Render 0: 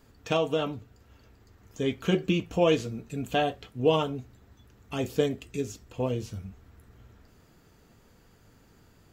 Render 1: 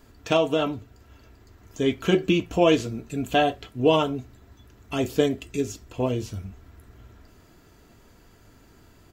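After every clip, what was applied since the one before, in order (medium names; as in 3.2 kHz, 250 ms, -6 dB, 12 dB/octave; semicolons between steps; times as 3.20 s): comb 3 ms, depth 31%; trim +4.5 dB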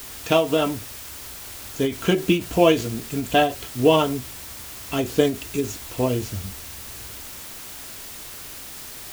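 added noise white -41 dBFS; endings held to a fixed fall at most 170 dB/s; trim +3 dB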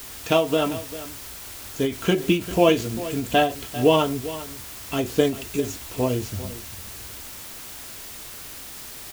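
delay 396 ms -15 dB; trim -1 dB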